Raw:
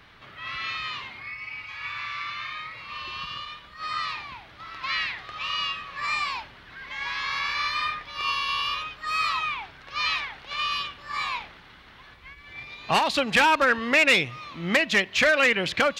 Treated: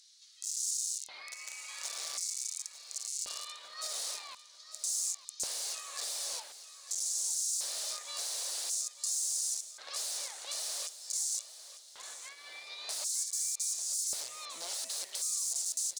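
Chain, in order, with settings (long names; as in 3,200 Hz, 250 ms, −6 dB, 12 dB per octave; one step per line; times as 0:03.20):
wrap-around overflow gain 28 dB
downward compressor 12 to 1, threshold −41 dBFS, peak gain reduction 10.5 dB
flat-topped bell 6,200 Hz +15 dB
auto-filter high-pass square 0.46 Hz 570–6,800 Hz
on a send: repeating echo 899 ms, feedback 41%, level −14 dB
on the sum: level −5.5 dB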